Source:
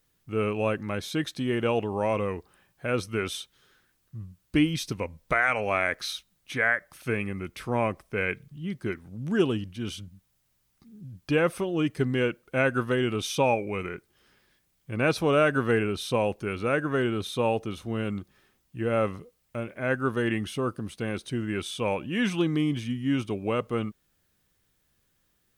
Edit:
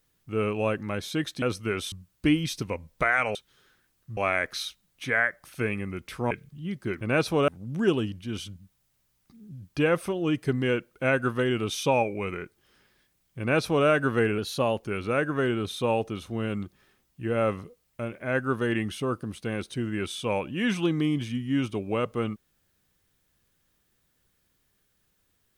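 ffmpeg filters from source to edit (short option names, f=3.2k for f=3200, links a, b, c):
-filter_complex "[0:a]asplit=10[a][b][c][d][e][f][g][h][i][j];[a]atrim=end=1.422[k];[b]atrim=start=2.898:end=3.402[l];[c]atrim=start=4.218:end=5.652[m];[d]atrim=start=3.398:end=4.222[n];[e]atrim=start=5.648:end=7.792[o];[f]atrim=start=8.298:end=9.002[p];[g]atrim=start=14.908:end=15.382[q];[h]atrim=start=8.998:end=15.904[r];[i]atrim=start=15.9:end=16.38,asetpts=PTS-STARTPTS,asetrate=47628,aresample=44100[s];[j]atrim=start=16.376[t];[k][l]acrossfade=d=0.004:c1=hsin:c2=hsin[u];[u][m]acrossfade=d=0.004:c1=hsin:c2=hsin[v];[v][n]acrossfade=d=0.004:c1=hsin:c2=hsin[w];[w][o]acrossfade=d=0.004:c1=hsin:c2=hsin[x];[x][p]acrossfade=d=0.004:c1=hsin:c2=hsin[y];[y][q]acrossfade=d=0.004:c1=hsin:c2=hsin[z];[z][r]acrossfade=d=0.004:c1=hsin:c2=hsin[aa];[aa][s]acrossfade=d=0.004:c1=hsin:c2=hsin[ab];[ab][t]acrossfade=d=0.004:c1=hsin:c2=hsin"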